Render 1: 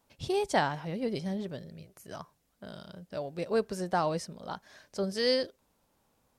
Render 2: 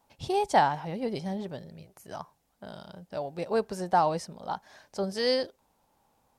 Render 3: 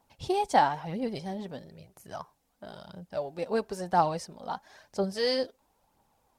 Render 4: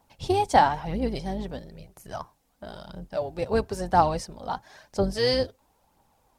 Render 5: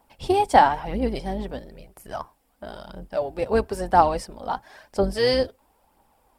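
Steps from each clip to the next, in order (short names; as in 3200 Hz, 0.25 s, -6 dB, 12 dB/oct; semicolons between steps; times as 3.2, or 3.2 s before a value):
bell 830 Hz +9 dB 0.53 oct
phaser 1 Hz, delay 4.5 ms, feedback 41%; gain -1.5 dB
octaver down 2 oct, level -3 dB; gain +4 dB
thirty-one-band EQ 100 Hz -11 dB, 160 Hz -9 dB, 4000 Hz -5 dB, 6300 Hz -9 dB; gain +3.5 dB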